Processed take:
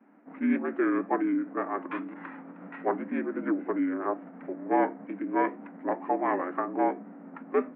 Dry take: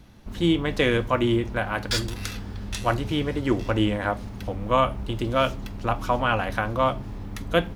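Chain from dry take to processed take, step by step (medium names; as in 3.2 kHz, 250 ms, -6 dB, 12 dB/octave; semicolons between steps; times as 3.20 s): vibrato 2 Hz 84 cents; mistuned SSB +77 Hz 180–2700 Hz; formant shift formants -6 st; trim -3.5 dB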